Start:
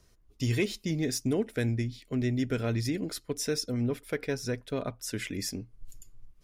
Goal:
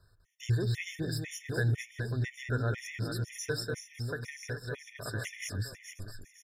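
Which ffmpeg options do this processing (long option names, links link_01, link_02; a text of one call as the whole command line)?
ffmpeg -i in.wav -filter_complex "[0:a]equalizer=frequency=100:width_type=o:width=0.67:gain=11,equalizer=frequency=250:width_type=o:width=0.67:gain=-9,equalizer=frequency=1600:width_type=o:width=0.67:gain=10,asplit=2[link_01][link_02];[link_02]aecho=0:1:200|420|662|928.2|1221:0.631|0.398|0.251|0.158|0.1[link_03];[link_01][link_03]amix=inputs=2:normalize=0,asettb=1/sr,asplit=3[link_04][link_05][link_06];[link_04]atrim=end=3.784[link_07];[link_05]atrim=start=3.78:end=4.96,asetpts=PTS-STARTPTS,afade=type=in:duration=0.004:curve=qsin,afade=type=out:start_time=1.176:duration=0.004:curve=qsin,acompressor=threshold=-27dB:ratio=6[link_08];[link_06]atrim=start=4.956[link_09];[link_07][link_08]acrossfade=duration=0.004:curve1=hsin:curve2=qsin[link_10];[link_10][link_09]acrossfade=duration=0.004:curve1=qsin:curve2=hsin,afftfilt=real='re*gt(sin(2*PI*2*pts/sr)*(1-2*mod(floor(b*sr/1024/1800),2)),0)':imag='im*gt(sin(2*PI*2*pts/sr)*(1-2*mod(floor(b*sr/1024/1800),2)),0)':win_size=1024:overlap=0.75,volume=-4dB" out.wav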